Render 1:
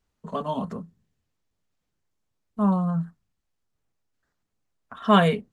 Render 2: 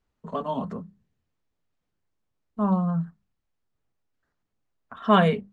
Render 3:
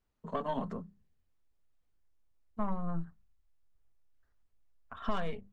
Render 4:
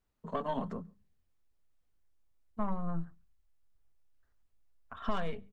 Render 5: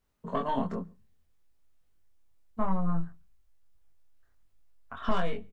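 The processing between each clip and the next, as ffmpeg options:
-af "aemphasis=mode=reproduction:type=50kf,bandreject=f=50:t=h:w=6,bandreject=f=100:t=h:w=6,bandreject=f=150:t=h:w=6,bandreject=f=200:t=h:w=6"
-af "aeval=exprs='0.562*(cos(1*acos(clip(val(0)/0.562,-1,1)))-cos(1*PI/2))+0.0282*(cos(8*acos(clip(val(0)/0.562,-1,1)))-cos(8*PI/2))':c=same,asubboost=boost=8:cutoff=65,acompressor=threshold=-23dB:ratio=10,volume=-4.5dB"
-filter_complex "[0:a]asplit=2[a][b];[b]adelay=139.9,volume=-29dB,highshelf=f=4k:g=-3.15[c];[a][c]amix=inputs=2:normalize=0"
-filter_complex "[0:a]asplit=2[a][b];[b]adelay=22,volume=-3dB[c];[a][c]amix=inputs=2:normalize=0,volume=3.5dB"

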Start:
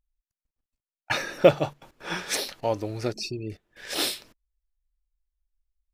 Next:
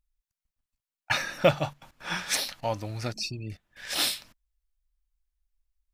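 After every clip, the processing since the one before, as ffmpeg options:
-af "equalizer=f=400:t=o:w=0.81:g=-14,volume=1dB"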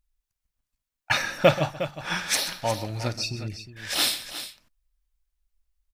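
-af "aecho=1:1:52|131|359:0.133|0.168|0.251,volume=3dB"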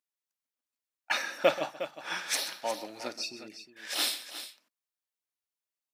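-af "highpass=f=260:w=0.5412,highpass=f=260:w=1.3066,volume=-6dB"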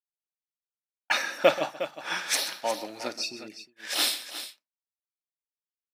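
-af "agate=range=-33dB:threshold=-45dB:ratio=3:detection=peak,volume=4dB"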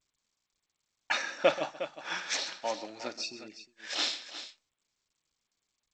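-af "volume=-4.5dB" -ar 16000 -c:a g722

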